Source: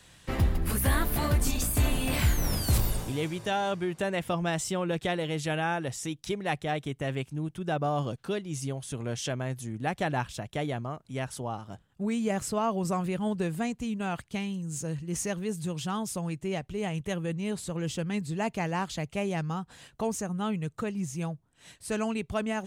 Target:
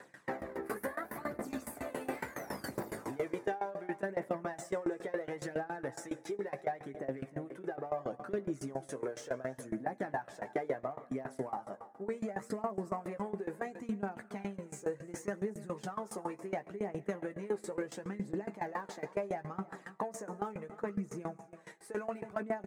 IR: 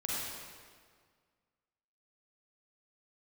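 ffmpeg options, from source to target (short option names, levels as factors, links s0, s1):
-filter_complex "[0:a]alimiter=level_in=1.06:limit=0.0631:level=0:latency=1:release=12,volume=0.944,asplit=2[s0][s1];[s1]highpass=f=720:p=1,volume=15.8,asoftclip=type=tanh:threshold=0.376[s2];[s0][s2]amix=inputs=2:normalize=0,lowpass=f=1400:p=1,volume=0.501,highshelf=f=2400:t=q:w=3:g=-7.5,asplit=2[s3][s4];[s4]adelay=15,volume=0.447[s5];[s3][s5]amix=inputs=2:normalize=0,asplit=2[s6][s7];[1:a]atrim=start_sample=2205[s8];[s7][s8]afir=irnorm=-1:irlink=0,volume=0.126[s9];[s6][s9]amix=inputs=2:normalize=0,aphaser=in_gain=1:out_gain=1:delay=2.6:decay=0.46:speed=0.71:type=triangular,aecho=1:1:318:0.112,acompressor=threshold=0.1:ratio=6,highpass=290,equalizer=f=1700:w=0.43:g=-13,aeval=exprs='val(0)*pow(10,-20*if(lt(mod(7.2*n/s,1),2*abs(7.2)/1000),1-mod(7.2*n/s,1)/(2*abs(7.2)/1000),(mod(7.2*n/s,1)-2*abs(7.2)/1000)/(1-2*abs(7.2)/1000))/20)':c=same"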